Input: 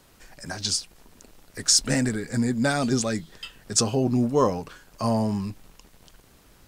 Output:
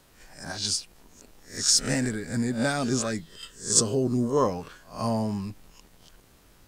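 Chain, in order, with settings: spectral swells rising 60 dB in 0.36 s; 3.29–4.37 thirty-one-band EQ 400 Hz +4 dB, 800 Hz -11 dB, 2500 Hz -10 dB, 8000 Hz +8 dB; gain -3.5 dB

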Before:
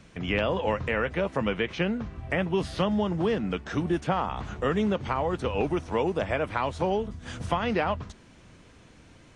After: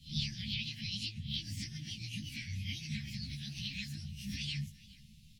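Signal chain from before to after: spectral swells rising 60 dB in 0.48 s; inverse Chebyshev band-stop 210–790 Hz, stop band 50 dB; speed mistake 45 rpm record played at 78 rpm; high shelf 3000 Hz -8.5 dB; doubler 19 ms -4 dB; echo 0.417 s -20.5 dB; ensemble effect

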